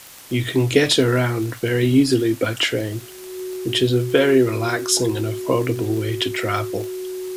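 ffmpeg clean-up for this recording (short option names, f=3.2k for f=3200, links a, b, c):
-af "adeclick=t=4,bandreject=f=370:w=30,afwtdn=0.0089"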